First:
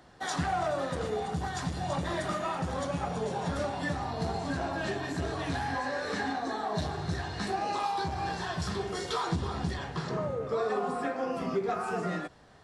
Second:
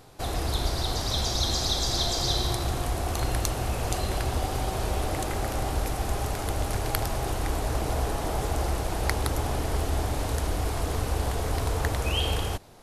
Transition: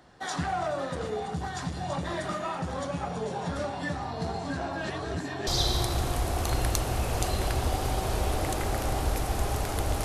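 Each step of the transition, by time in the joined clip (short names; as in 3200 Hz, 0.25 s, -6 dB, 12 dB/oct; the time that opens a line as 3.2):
first
4.9–5.47 reverse
5.47 switch to second from 2.17 s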